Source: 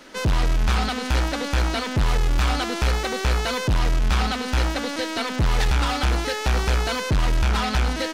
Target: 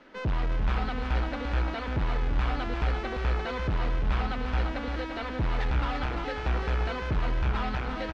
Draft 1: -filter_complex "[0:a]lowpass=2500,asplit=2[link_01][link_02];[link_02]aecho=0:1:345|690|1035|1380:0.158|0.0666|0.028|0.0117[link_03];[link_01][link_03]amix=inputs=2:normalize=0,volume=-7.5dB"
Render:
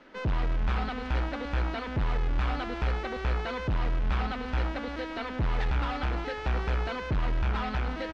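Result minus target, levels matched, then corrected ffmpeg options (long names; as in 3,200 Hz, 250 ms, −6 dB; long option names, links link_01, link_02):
echo-to-direct −9 dB
-filter_complex "[0:a]lowpass=2500,asplit=2[link_01][link_02];[link_02]aecho=0:1:345|690|1035|1380|1725:0.447|0.188|0.0788|0.0331|0.0139[link_03];[link_01][link_03]amix=inputs=2:normalize=0,volume=-7.5dB"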